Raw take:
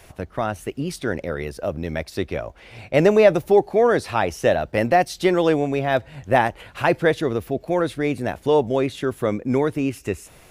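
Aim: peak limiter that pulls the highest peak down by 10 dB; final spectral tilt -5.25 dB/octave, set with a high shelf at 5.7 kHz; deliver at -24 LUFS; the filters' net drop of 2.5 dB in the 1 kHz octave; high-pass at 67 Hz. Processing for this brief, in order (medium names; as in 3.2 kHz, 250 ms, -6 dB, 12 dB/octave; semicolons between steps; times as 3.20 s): high-pass 67 Hz; peaking EQ 1 kHz -4 dB; treble shelf 5.7 kHz +5 dB; trim +1 dB; peak limiter -11.5 dBFS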